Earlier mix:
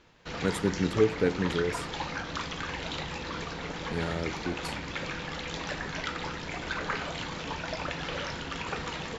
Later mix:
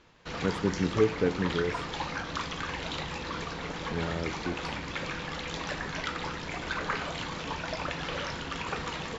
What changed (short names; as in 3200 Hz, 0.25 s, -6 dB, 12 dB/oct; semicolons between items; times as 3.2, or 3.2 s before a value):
speech: add tape spacing loss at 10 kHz 21 dB; master: add bell 1100 Hz +3 dB 0.26 oct